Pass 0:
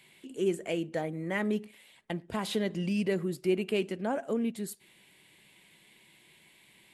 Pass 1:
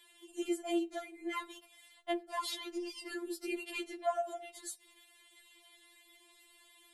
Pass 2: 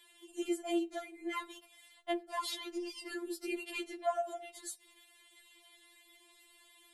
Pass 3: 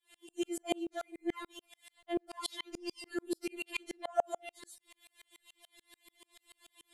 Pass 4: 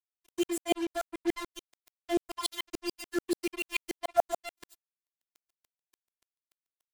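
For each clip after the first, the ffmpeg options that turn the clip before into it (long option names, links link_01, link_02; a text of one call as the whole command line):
ffmpeg -i in.wav -af "superequalizer=6b=0.398:11b=0.708:12b=0.501,afftfilt=real='re*4*eq(mod(b,16),0)':imag='im*4*eq(mod(b,16),0)':win_size=2048:overlap=0.75,volume=2.5dB" out.wav
ffmpeg -i in.wav -af anull out.wav
ffmpeg -i in.wav -af "aeval=exprs='val(0)*pow(10,-39*if(lt(mod(-6.9*n/s,1),2*abs(-6.9)/1000),1-mod(-6.9*n/s,1)/(2*abs(-6.9)/1000),(mod(-6.9*n/s,1)-2*abs(-6.9)/1000)/(1-2*abs(-6.9)/1000))/20)':channel_layout=same,volume=9.5dB" out.wav
ffmpeg -i in.wav -af "acrusher=bits=6:mix=0:aa=0.5,volume=5.5dB" out.wav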